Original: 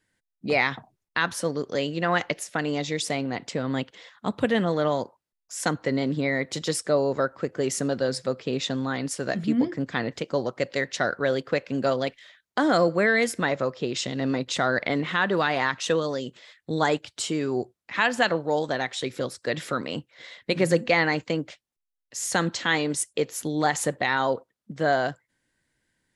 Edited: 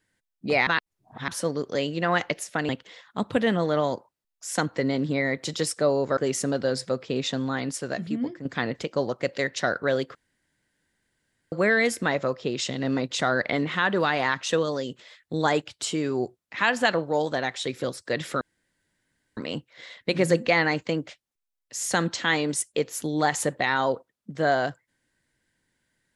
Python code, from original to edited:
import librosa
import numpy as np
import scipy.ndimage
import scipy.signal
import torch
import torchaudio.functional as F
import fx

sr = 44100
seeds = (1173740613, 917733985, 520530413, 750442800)

y = fx.edit(x, sr, fx.reverse_span(start_s=0.67, length_s=0.61),
    fx.cut(start_s=2.69, length_s=1.08),
    fx.cut(start_s=7.25, length_s=0.29),
    fx.fade_out_to(start_s=8.98, length_s=0.84, floor_db=-10.0),
    fx.room_tone_fill(start_s=11.52, length_s=1.37),
    fx.insert_room_tone(at_s=19.78, length_s=0.96), tone=tone)